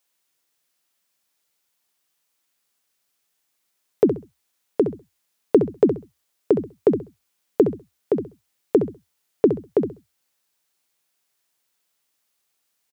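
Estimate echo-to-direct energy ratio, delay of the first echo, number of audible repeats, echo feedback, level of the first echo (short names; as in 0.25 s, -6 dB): -9.0 dB, 66 ms, 2, 21%, -9.0 dB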